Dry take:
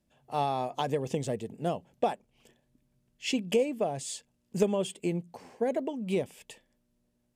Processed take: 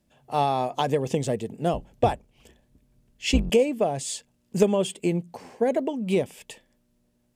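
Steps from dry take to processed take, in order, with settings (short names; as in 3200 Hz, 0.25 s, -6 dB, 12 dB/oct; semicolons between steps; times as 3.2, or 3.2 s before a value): 1.73–3.5 octaver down 2 oct, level +2 dB; gain +6 dB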